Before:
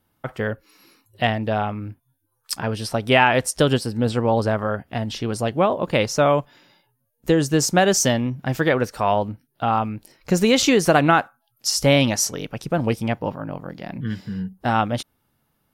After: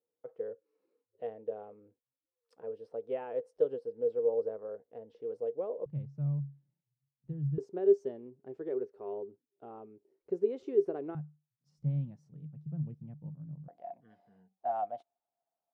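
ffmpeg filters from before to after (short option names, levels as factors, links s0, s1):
-af "asetnsamples=n=441:p=0,asendcmd='5.86 bandpass f 140;7.58 bandpass f 400;11.15 bandpass f 150;13.68 bandpass f 700',bandpass=f=470:t=q:w=20:csg=0"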